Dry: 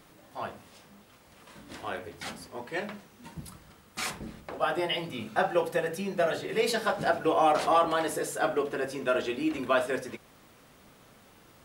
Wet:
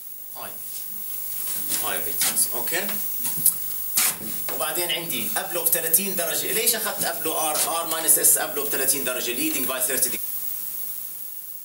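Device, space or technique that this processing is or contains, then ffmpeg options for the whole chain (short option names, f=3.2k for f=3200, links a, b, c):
FM broadcast chain: -filter_complex "[0:a]highpass=51,dynaudnorm=f=210:g=9:m=9.5dB,acrossover=split=140|3000[a][b][c];[a]acompressor=threshold=-49dB:ratio=4[d];[b]acompressor=threshold=-20dB:ratio=4[e];[c]acompressor=threshold=-39dB:ratio=4[f];[d][e][f]amix=inputs=3:normalize=0,aemphasis=mode=production:type=75fm,alimiter=limit=-13dB:level=0:latency=1:release=306,asoftclip=type=hard:threshold=-16dB,lowpass=f=15k:w=0.5412,lowpass=f=15k:w=1.3066,aemphasis=mode=production:type=75fm,volume=-3dB"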